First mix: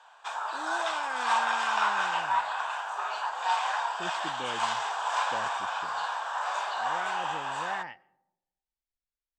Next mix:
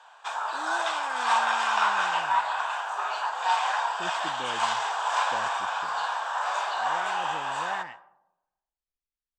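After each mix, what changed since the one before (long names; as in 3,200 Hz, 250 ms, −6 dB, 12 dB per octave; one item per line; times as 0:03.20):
background: send on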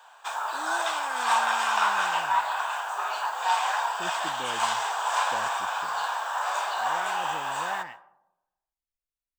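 master: remove low-pass filter 6,600 Hz 12 dB per octave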